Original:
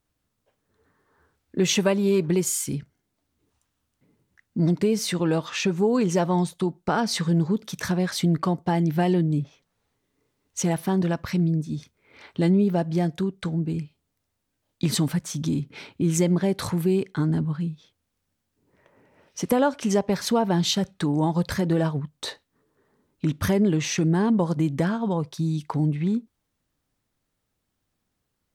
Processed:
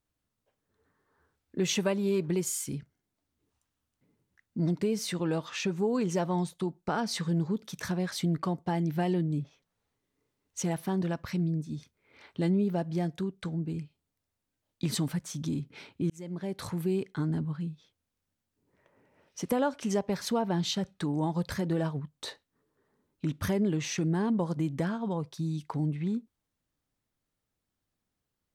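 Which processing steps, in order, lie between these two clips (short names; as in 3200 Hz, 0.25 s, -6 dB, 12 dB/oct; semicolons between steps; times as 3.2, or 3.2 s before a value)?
16.1–17.08 fade in equal-power; 20.41–20.87 high shelf 9300 Hz -7.5 dB; gain -7 dB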